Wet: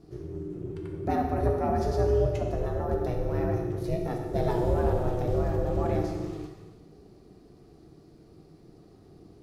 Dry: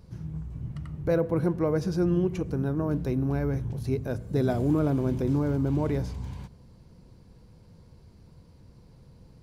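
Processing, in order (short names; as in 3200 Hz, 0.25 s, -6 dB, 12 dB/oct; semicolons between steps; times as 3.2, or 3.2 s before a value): ring modulator 240 Hz; non-linear reverb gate 0.49 s falling, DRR 1 dB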